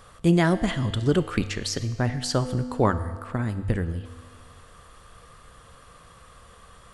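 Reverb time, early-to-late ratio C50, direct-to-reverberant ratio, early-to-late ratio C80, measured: 1.7 s, 12.5 dB, 10.5 dB, 13.5 dB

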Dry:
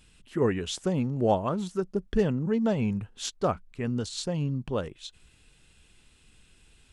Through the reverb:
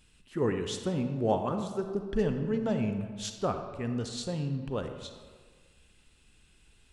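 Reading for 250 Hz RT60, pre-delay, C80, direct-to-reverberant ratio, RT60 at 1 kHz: 1.5 s, 33 ms, 8.5 dB, 6.0 dB, 1.7 s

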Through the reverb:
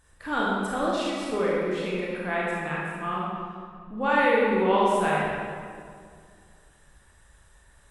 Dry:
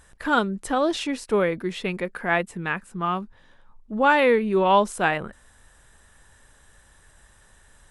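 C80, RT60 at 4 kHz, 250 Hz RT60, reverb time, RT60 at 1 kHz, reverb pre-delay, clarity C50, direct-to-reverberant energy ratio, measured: -0.5 dB, 1.3 s, 2.6 s, 2.1 s, 2.0 s, 25 ms, -3.0 dB, -6.0 dB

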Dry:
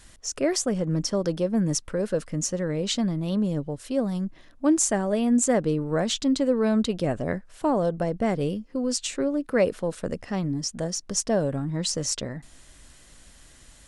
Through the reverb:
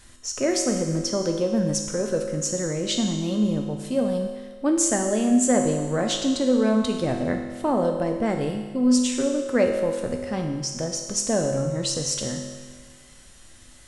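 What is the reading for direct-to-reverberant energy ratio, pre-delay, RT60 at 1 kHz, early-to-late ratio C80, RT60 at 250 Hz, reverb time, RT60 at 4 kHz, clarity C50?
2.5 dB, 4 ms, 1.5 s, 6.5 dB, 1.5 s, 1.5 s, 1.5 s, 5.0 dB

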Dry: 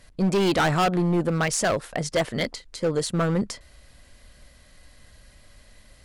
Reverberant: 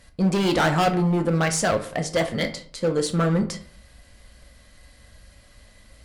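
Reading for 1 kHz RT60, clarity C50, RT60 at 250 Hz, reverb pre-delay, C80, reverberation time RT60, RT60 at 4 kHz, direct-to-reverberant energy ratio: 0.45 s, 12.5 dB, 0.55 s, 3 ms, 16.5 dB, 0.50 s, 0.30 s, 5.0 dB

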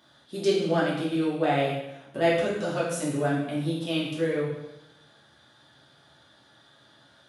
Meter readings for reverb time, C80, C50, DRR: 0.90 s, 5.0 dB, 2.5 dB, -7.0 dB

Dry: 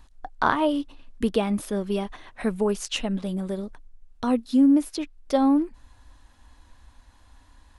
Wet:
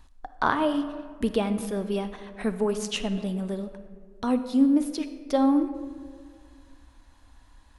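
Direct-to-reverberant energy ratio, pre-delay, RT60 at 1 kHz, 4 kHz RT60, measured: 10.0 dB, 30 ms, 1.7 s, 0.90 s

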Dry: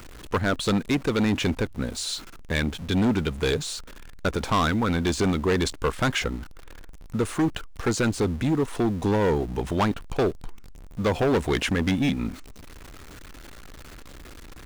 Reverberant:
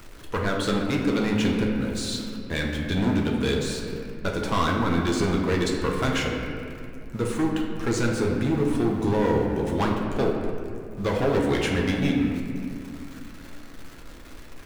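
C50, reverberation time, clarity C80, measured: 2.5 dB, 2.3 s, 4.0 dB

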